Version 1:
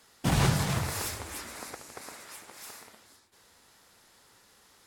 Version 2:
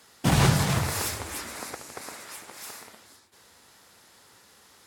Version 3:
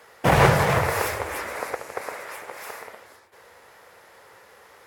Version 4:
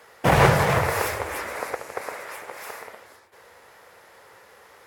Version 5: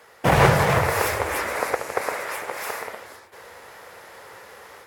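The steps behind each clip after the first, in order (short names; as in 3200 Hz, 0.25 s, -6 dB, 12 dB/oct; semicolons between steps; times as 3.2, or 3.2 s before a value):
HPF 56 Hz; gain +4.5 dB
graphic EQ 250/500/1000/2000/4000/8000 Hz -7/+12/+4/+7/-5/-6 dB; gain +1.5 dB
nothing audible
AGC gain up to 7 dB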